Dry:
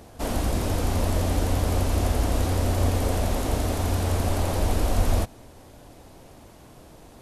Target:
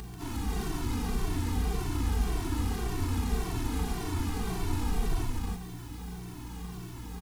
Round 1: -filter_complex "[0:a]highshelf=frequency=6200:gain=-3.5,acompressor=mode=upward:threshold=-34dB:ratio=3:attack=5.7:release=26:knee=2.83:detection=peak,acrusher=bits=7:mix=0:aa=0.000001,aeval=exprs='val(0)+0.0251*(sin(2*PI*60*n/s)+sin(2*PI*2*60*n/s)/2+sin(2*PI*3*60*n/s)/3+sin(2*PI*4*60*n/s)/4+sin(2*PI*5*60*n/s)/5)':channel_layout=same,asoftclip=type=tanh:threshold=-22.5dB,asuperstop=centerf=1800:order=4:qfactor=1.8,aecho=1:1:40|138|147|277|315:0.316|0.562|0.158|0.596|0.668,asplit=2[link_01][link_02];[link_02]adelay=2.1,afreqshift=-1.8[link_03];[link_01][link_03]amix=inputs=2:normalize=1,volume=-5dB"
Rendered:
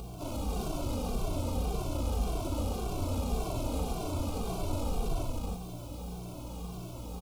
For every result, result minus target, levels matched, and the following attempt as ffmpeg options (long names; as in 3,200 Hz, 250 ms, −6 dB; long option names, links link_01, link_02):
2,000 Hz band −6.5 dB; soft clipping: distortion +7 dB
-filter_complex "[0:a]highshelf=frequency=6200:gain=-3.5,acompressor=mode=upward:threshold=-34dB:ratio=3:attack=5.7:release=26:knee=2.83:detection=peak,acrusher=bits=7:mix=0:aa=0.000001,aeval=exprs='val(0)+0.0251*(sin(2*PI*60*n/s)+sin(2*PI*2*60*n/s)/2+sin(2*PI*3*60*n/s)/3+sin(2*PI*4*60*n/s)/4+sin(2*PI*5*60*n/s)/5)':channel_layout=same,asoftclip=type=tanh:threshold=-22.5dB,asuperstop=centerf=580:order=4:qfactor=1.8,aecho=1:1:40|138|147|277|315:0.316|0.562|0.158|0.596|0.668,asplit=2[link_01][link_02];[link_02]adelay=2.1,afreqshift=-1.8[link_03];[link_01][link_03]amix=inputs=2:normalize=1,volume=-5dB"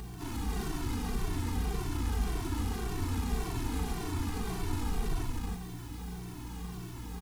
soft clipping: distortion +7 dB
-filter_complex "[0:a]highshelf=frequency=6200:gain=-3.5,acompressor=mode=upward:threshold=-34dB:ratio=3:attack=5.7:release=26:knee=2.83:detection=peak,acrusher=bits=7:mix=0:aa=0.000001,aeval=exprs='val(0)+0.0251*(sin(2*PI*60*n/s)+sin(2*PI*2*60*n/s)/2+sin(2*PI*3*60*n/s)/3+sin(2*PI*4*60*n/s)/4+sin(2*PI*5*60*n/s)/5)':channel_layout=same,asoftclip=type=tanh:threshold=-16dB,asuperstop=centerf=580:order=4:qfactor=1.8,aecho=1:1:40|138|147|277|315:0.316|0.562|0.158|0.596|0.668,asplit=2[link_01][link_02];[link_02]adelay=2.1,afreqshift=-1.8[link_03];[link_01][link_03]amix=inputs=2:normalize=1,volume=-5dB"